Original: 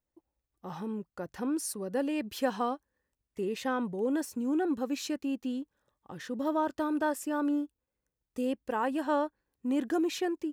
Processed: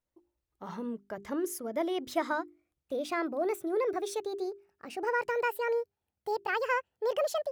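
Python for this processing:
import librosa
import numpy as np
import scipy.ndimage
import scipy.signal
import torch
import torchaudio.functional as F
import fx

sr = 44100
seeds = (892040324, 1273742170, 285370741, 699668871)

y = fx.speed_glide(x, sr, from_pct=101, to_pct=179)
y = fx.high_shelf(y, sr, hz=4900.0, db=-4.0)
y = fx.hum_notches(y, sr, base_hz=50, count=8)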